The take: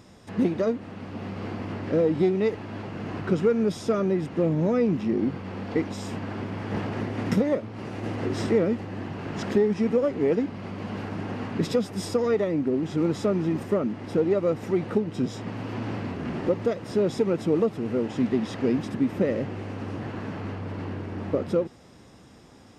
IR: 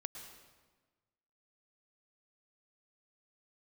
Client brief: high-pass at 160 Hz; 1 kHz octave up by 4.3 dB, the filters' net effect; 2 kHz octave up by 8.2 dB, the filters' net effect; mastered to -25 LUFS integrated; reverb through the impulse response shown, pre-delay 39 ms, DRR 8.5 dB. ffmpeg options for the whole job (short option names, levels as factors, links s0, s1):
-filter_complex "[0:a]highpass=160,equalizer=f=1000:t=o:g=3,equalizer=f=2000:t=o:g=9,asplit=2[s0][s1];[1:a]atrim=start_sample=2205,adelay=39[s2];[s1][s2]afir=irnorm=-1:irlink=0,volume=0.501[s3];[s0][s3]amix=inputs=2:normalize=0,volume=1.12"